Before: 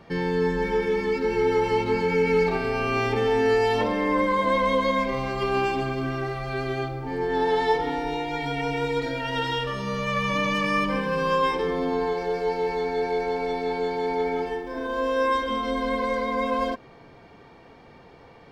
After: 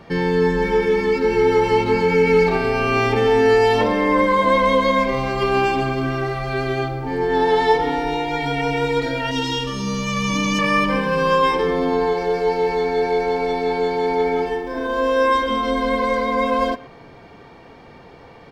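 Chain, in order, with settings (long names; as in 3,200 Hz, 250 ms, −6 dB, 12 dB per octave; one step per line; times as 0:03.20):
0:09.31–0:10.59: graphic EQ with 15 bands 100 Hz −5 dB, 250 Hz +6 dB, 630 Hz −11 dB, 1,600 Hz −11 dB, 6,300 Hz +9 dB
far-end echo of a speakerphone 120 ms, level −19 dB
level +6 dB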